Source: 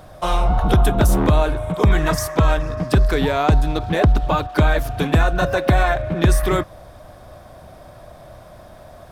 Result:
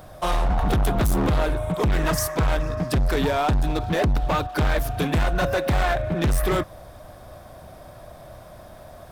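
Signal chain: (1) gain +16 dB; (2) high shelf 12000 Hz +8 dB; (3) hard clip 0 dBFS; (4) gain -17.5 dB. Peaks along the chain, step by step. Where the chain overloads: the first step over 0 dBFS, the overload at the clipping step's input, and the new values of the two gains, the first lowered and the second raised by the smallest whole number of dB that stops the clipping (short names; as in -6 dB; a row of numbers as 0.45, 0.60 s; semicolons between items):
+9.0, +9.5, 0.0, -17.5 dBFS; step 1, 9.5 dB; step 1 +6 dB, step 4 -7.5 dB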